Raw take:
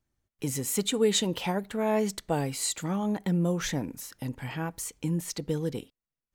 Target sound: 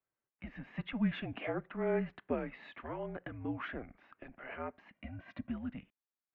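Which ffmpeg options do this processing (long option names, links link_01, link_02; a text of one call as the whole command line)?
ffmpeg -i in.wav -filter_complex "[0:a]asettb=1/sr,asplit=3[link_01][link_02][link_03];[link_01]atrim=end=4.944[link_04];[link_02]atrim=start=4.94:end=5.5,asetpts=PTS-STARTPTS,afade=type=in:duration=0.004:curve=qsin,afade=type=out:start_time=0.556:duration=0.004:curve=qsin,aecho=1:1:2.3:0.84,atrim=end_sample=24696[link_05];[link_03]atrim=start=5.496[link_06];[link_04][link_05]acrossfade=duration=0.004:curve1=hsin:curve2=qsin[link_07];[link_07][link_06]acrossfade=duration=0.004:curve1=qsin:curve2=hsin,highpass=frequency=430:width_type=q:width=0.5412,highpass=frequency=430:width_type=q:width=1.307,lowpass=frequency=2700:width_type=q:width=0.5176,lowpass=frequency=2700:width_type=q:width=0.7071,lowpass=frequency=2700:width_type=q:width=1.932,afreqshift=-240,volume=-4dB" out.wav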